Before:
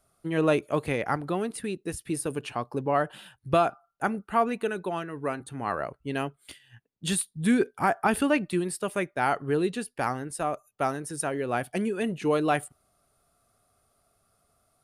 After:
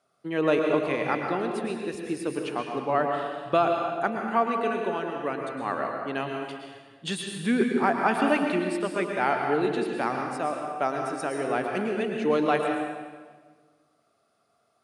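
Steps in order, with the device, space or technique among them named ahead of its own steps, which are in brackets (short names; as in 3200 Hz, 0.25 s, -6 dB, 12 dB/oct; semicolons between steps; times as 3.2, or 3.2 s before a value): supermarket ceiling speaker (BPF 220–5400 Hz; reverb RT60 1.5 s, pre-delay 0.103 s, DRR 2 dB)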